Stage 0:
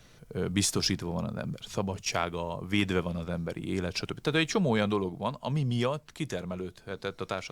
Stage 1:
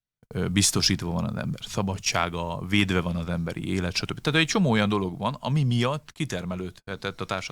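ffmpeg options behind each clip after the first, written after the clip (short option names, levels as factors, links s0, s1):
-af "agate=range=0.00631:threshold=0.00501:ratio=16:detection=peak,equalizer=f=460:t=o:w=1.3:g=-5.5,volume=2.11"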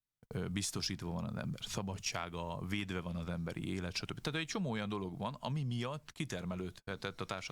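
-af "acompressor=threshold=0.0282:ratio=4,volume=0.562"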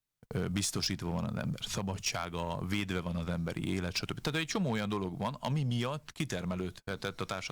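-filter_complex "[0:a]asplit=2[s0][s1];[s1]acrusher=bits=4:mix=0:aa=0.5,volume=0.355[s2];[s0][s2]amix=inputs=2:normalize=0,volume=26.6,asoftclip=hard,volume=0.0376,volume=1.68"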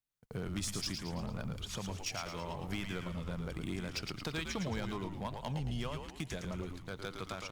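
-filter_complex "[0:a]asplit=7[s0][s1][s2][s3][s4][s5][s6];[s1]adelay=111,afreqshift=-100,volume=0.531[s7];[s2]adelay=222,afreqshift=-200,volume=0.248[s8];[s3]adelay=333,afreqshift=-300,volume=0.117[s9];[s4]adelay=444,afreqshift=-400,volume=0.055[s10];[s5]adelay=555,afreqshift=-500,volume=0.026[s11];[s6]adelay=666,afreqshift=-600,volume=0.0122[s12];[s0][s7][s8][s9][s10][s11][s12]amix=inputs=7:normalize=0,volume=0.501"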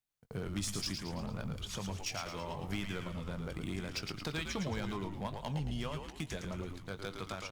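-filter_complex "[0:a]asplit=2[s0][s1];[s1]adelay=20,volume=0.251[s2];[s0][s2]amix=inputs=2:normalize=0"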